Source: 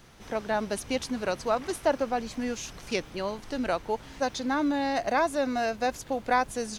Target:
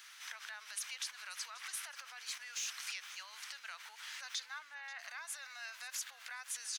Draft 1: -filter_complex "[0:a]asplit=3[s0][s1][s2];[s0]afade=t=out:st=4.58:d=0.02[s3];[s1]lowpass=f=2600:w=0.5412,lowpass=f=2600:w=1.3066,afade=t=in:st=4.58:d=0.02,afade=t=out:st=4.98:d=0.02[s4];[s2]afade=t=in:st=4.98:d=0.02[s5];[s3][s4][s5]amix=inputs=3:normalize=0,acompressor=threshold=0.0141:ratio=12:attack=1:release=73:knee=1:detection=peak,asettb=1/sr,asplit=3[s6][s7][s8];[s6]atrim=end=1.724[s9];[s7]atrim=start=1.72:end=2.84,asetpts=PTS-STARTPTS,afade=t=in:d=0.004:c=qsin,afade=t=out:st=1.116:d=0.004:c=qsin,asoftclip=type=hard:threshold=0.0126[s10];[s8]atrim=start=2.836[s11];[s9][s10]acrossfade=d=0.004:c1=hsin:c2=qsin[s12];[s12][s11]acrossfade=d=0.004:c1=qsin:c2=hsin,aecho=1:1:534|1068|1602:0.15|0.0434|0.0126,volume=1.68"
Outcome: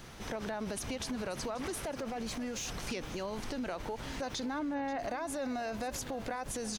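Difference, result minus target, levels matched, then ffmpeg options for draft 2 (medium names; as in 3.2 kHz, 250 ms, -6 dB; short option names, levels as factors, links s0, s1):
1 kHz band +7.5 dB
-filter_complex "[0:a]asplit=3[s0][s1][s2];[s0]afade=t=out:st=4.58:d=0.02[s3];[s1]lowpass=f=2600:w=0.5412,lowpass=f=2600:w=1.3066,afade=t=in:st=4.58:d=0.02,afade=t=out:st=4.98:d=0.02[s4];[s2]afade=t=in:st=4.98:d=0.02[s5];[s3][s4][s5]amix=inputs=3:normalize=0,acompressor=threshold=0.0141:ratio=12:attack=1:release=73:knee=1:detection=peak,highpass=f=1400:w=0.5412,highpass=f=1400:w=1.3066,asettb=1/sr,asplit=3[s6][s7][s8];[s6]atrim=end=1.724[s9];[s7]atrim=start=1.72:end=2.84,asetpts=PTS-STARTPTS,afade=t=in:d=0.004:c=qsin,afade=t=out:st=1.116:d=0.004:c=qsin,asoftclip=type=hard:threshold=0.0126[s10];[s8]atrim=start=2.836[s11];[s9][s10]acrossfade=d=0.004:c1=hsin:c2=qsin[s12];[s12][s11]acrossfade=d=0.004:c1=qsin:c2=hsin,aecho=1:1:534|1068|1602:0.15|0.0434|0.0126,volume=1.68"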